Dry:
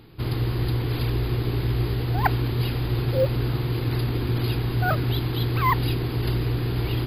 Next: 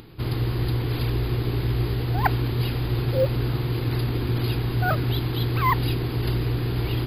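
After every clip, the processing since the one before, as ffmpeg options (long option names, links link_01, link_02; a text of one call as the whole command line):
ffmpeg -i in.wav -af "acompressor=mode=upward:threshold=-41dB:ratio=2.5" out.wav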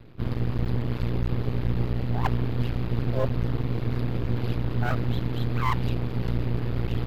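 ffmpeg -i in.wav -af "bass=frequency=250:gain=5,treble=frequency=4000:gain=-12,aeval=exprs='max(val(0),0)':channel_layout=same,volume=-2dB" out.wav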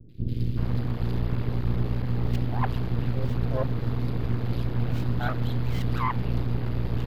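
ffmpeg -i in.wav -filter_complex "[0:a]acrossover=split=400|2600[link_01][link_02][link_03];[link_03]adelay=90[link_04];[link_02]adelay=380[link_05];[link_01][link_05][link_04]amix=inputs=3:normalize=0" out.wav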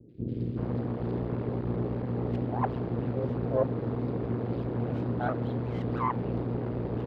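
ffmpeg -i in.wav -af "bandpass=frequency=450:width_type=q:width=0.95:csg=0,volume=5dB" out.wav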